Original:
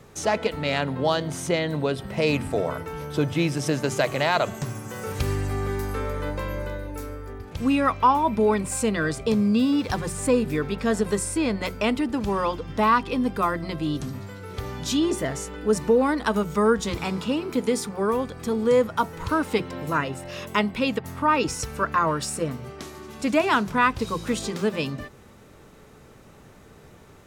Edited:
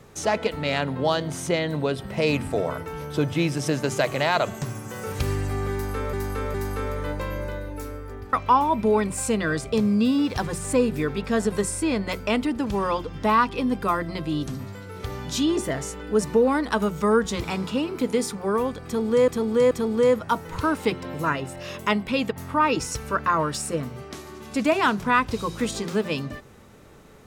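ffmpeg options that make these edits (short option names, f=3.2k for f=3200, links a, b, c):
-filter_complex "[0:a]asplit=6[a][b][c][d][e][f];[a]atrim=end=6.132[g];[b]atrim=start=5.718:end=6.132[h];[c]atrim=start=5.718:end=7.512[i];[d]atrim=start=7.868:end=18.822[j];[e]atrim=start=18.388:end=18.822[k];[f]atrim=start=18.388[l];[g][h]acrossfade=d=0.004:c1=hsin:c2=hsin[m];[m][i]acrossfade=d=0.004:c1=hsin:c2=hsin[n];[n][j]acrossfade=d=0.004:c1=hsin:c2=hsin[o];[o][k]acrossfade=d=0.004:c1=hsin:c2=hsin[p];[p][l]acrossfade=d=0.004:c1=hsin:c2=hsin"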